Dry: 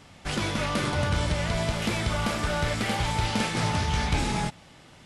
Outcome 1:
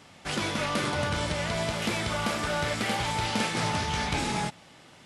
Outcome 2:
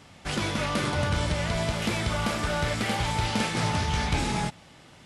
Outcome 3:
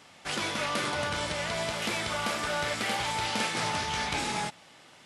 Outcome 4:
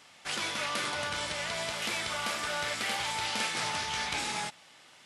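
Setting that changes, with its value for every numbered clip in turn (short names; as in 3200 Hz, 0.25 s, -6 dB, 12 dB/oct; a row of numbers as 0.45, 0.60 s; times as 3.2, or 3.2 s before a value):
HPF, cutoff: 180, 41, 520, 1300 Hz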